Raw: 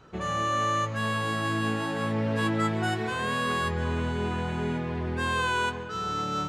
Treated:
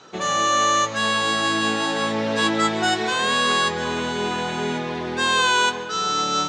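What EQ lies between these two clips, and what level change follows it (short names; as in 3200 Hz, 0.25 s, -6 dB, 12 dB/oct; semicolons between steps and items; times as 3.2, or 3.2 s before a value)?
speaker cabinet 240–8100 Hz, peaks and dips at 790 Hz +3 dB, 3700 Hz +6 dB, 6000 Hz +3 dB; high shelf 3900 Hz +8 dB; bell 5800 Hz +3 dB; +6.5 dB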